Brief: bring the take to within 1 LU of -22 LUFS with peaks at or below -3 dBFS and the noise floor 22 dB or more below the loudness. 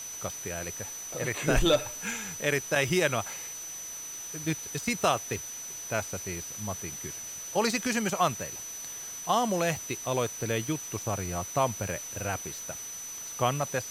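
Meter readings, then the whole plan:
steady tone 6 kHz; tone level -38 dBFS; noise floor -40 dBFS; noise floor target -53 dBFS; loudness -30.5 LUFS; peak level -10.5 dBFS; loudness target -22.0 LUFS
-> band-stop 6 kHz, Q 30; noise reduction 13 dB, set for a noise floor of -40 dBFS; trim +8.5 dB; peak limiter -3 dBFS

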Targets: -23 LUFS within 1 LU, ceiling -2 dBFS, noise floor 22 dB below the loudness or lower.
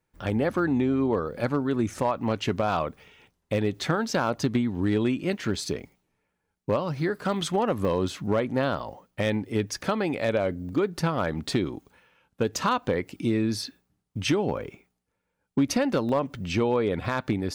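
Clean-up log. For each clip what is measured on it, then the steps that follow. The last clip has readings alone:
clipped samples 0.3%; clipping level -15.5 dBFS; dropouts 6; longest dropout 1.1 ms; loudness -27.0 LUFS; peak level -15.5 dBFS; loudness target -23.0 LUFS
-> clip repair -15.5 dBFS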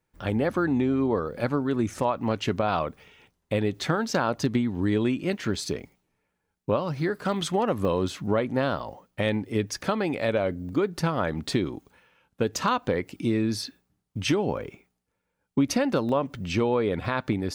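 clipped samples 0.0%; dropouts 6; longest dropout 1.1 ms
-> interpolate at 5.55/7.32/7.85/10.69/16.09/17.28 s, 1.1 ms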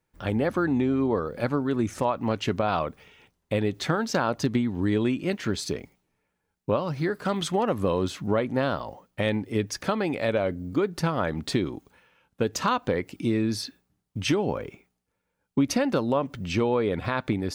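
dropouts 0; loudness -27.0 LUFS; peak level -10.5 dBFS; loudness target -23.0 LUFS
-> trim +4 dB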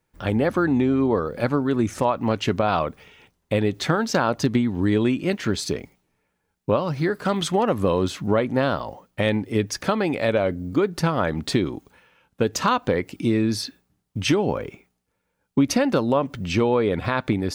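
loudness -23.0 LUFS; peak level -6.5 dBFS; noise floor -75 dBFS

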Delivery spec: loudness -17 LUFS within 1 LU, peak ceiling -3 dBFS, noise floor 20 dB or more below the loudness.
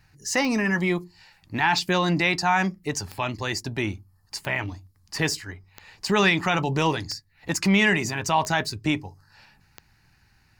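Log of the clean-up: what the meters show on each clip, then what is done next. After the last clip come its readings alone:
clicks found 8; loudness -24.5 LUFS; peak level -9.5 dBFS; loudness target -17.0 LUFS
-> de-click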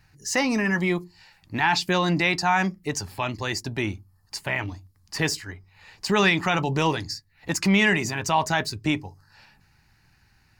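clicks found 0; loudness -24.5 LUFS; peak level -9.5 dBFS; loudness target -17.0 LUFS
-> trim +7.5 dB; peak limiter -3 dBFS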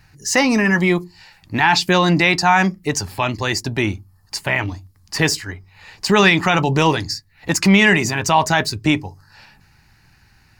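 loudness -17.0 LUFS; peak level -3.0 dBFS; noise floor -54 dBFS

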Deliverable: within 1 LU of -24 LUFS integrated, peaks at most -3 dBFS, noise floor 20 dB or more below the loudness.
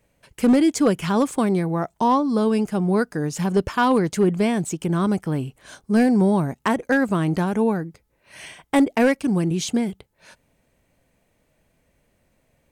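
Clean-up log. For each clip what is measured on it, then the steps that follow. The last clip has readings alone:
clipped samples 0.5%; clipping level -11.0 dBFS; loudness -21.0 LUFS; peak level -11.0 dBFS; loudness target -24.0 LUFS
-> clip repair -11 dBFS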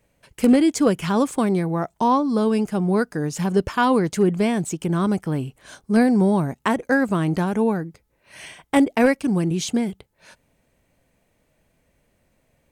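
clipped samples 0.0%; loudness -21.0 LUFS; peak level -2.5 dBFS; loudness target -24.0 LUFS
-> trim -3 dB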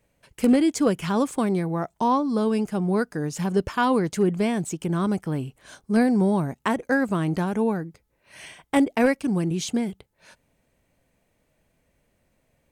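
loudness -24.0 LUFS; peak level -5.5 dBFS; noise floor -70 dBFS

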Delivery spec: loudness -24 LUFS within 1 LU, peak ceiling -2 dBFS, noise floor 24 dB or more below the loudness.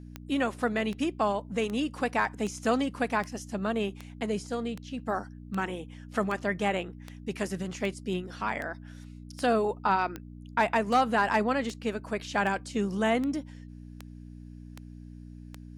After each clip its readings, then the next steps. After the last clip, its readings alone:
clicks found 21; hum 60 Hz; highest harmonic 300 Hz; hum level -43 dBFS; loudness -30.0 LUFS; peak level -12.5 dBFS; loudness target -24.0 LUFS
-> de-click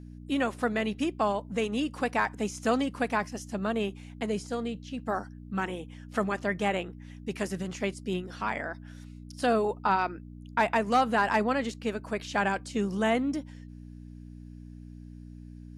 clicks found 0; hum 60 Hz; highest harmonic 300 Hz; hum level -43 dBFS
-> de-hum 60 Hz, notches 5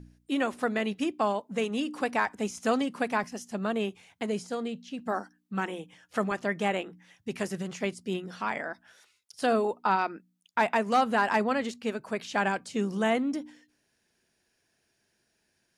hum not found; loudness -30.0 LUFS; peak level -13.0 dBFS; loudness target -24.0 LUFS
-> trim +6 dB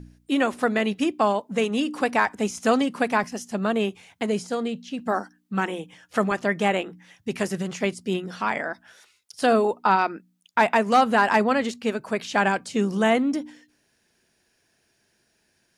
loudness -24.0 LUFS; peak level -7.0 dBFS; noise floor -69 dBFS

